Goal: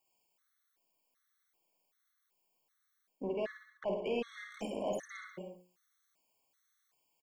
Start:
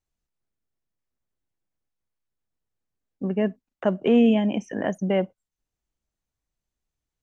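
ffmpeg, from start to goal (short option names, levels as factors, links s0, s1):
-filter_complex "[0:a]aemphasis=mode=production:type=riaa,bandreject=f=60:t=h:w=6,bandreject=f=120:t=h:w=6,bandreject=f=180:t=h:w=6,bandreject=f=240:t=h:w=6,bandreject=f=300:t=h:w=6,bandreject=f=360:t=h:w=6,bandreject=f=420:t=h:w=6,bandreject=f=480:t=h:w=6,bandreject=f=540:t=h:w=6,areverse,acompressor=threshold=0.0112:ratio=5,areverse,asplit=2[s0][s1];[s1]highpass=f=720:p=1,volume=8.91,asoftclip=type=tanh:threshold=0.0398[s2];[s0][s2]amix=inputs=2:normalize=0,lowpass=f=1000:p=1,volume=0.501,asplit=2[s3][s4];[s4]aecho=0:1:50|105|165.5|232|305.3:0.631|0.398|0.251|0.158|0.1[s5];[s3][s5]amix=inputs=2:normalize=0,afftfilt=real='re*gt(sin(2*PI*1.3*pts/sr)*(1-2*mod(floor(b*sr/1024/1100),2)),0)':imag='im*gt(sin(2*PI*1.3*pts/sr)*(1-2*mod(floor(b*sr/1024/1100),2)),0)':win_size=1024:overlap=0.75,volume=1.33"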